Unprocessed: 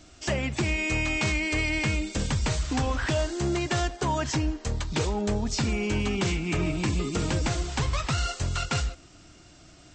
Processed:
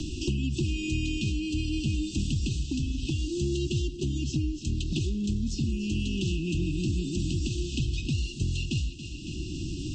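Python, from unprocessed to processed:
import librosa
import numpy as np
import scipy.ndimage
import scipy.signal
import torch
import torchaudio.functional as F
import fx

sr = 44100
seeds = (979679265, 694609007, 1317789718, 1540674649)

p1 = fx.brickwall_bandstop(x, sr, low_hz=390.0, high_hz=2500.0)
p2 = fx.high_shelf(p1, sr, hz=6800.0, db=-8.0)
p3 = p2 + fx.echo_feedback(p2, sr, ms=278, feedback_pct=49, wet_db=-17, dry=0)
p4 = fx.rotary(p3, sr, hz=0.75)
y = fx.band_squash(p4, sr, depth_pct=100)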